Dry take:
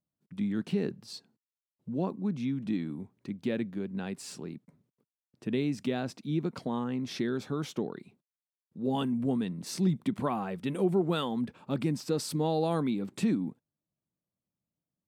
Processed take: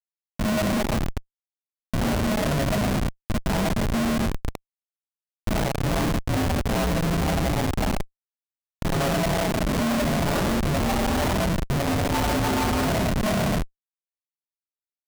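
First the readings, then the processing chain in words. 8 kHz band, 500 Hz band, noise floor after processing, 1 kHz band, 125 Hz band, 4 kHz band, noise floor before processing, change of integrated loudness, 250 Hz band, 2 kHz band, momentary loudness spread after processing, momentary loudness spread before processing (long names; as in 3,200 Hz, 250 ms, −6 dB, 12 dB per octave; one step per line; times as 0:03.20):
+13.0 dB, +7.0 dB, below −85 dBFS, +11.5 dB, +10.0 dB, +11.5 dB, below −85 dBFS, +8.0 dB, +5.5 dB, +15.5 dB, 7 LU, 13 LU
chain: ring modulation 420 Hz
four-comb reverb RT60 0.95 s, combs from 27 ms, DRR −5.5 dB
comparator with hysteresis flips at −29 dBFS
level +6.5 dB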